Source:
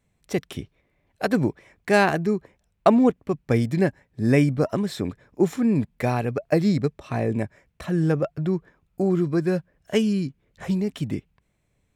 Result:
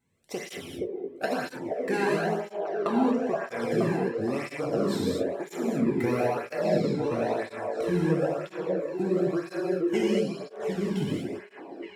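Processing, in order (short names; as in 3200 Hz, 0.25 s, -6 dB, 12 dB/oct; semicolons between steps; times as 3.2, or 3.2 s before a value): compressor, threshold -21 dBFS, peak gain reduction 10.5 dB; on a send: delay with a stepping band-pass 0.472 s, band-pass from 490 Hz, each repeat 0.7 oct, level -0.5 dB; on the sum: non-linear reverb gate 0.26 s flat, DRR -4 dB; tape flanging out of phase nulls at 1 Hz, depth 1.8 ms; gain -2.5 dB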